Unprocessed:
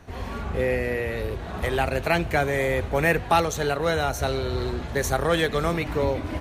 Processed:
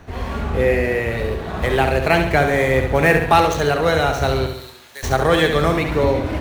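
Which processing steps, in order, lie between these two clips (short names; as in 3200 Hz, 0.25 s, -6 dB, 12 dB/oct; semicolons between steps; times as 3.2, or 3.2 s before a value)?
median filter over 5 samples; 4.46–5.03 differentiator; flutter echo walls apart 11.7 m, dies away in 0.61 s; gain +6 dB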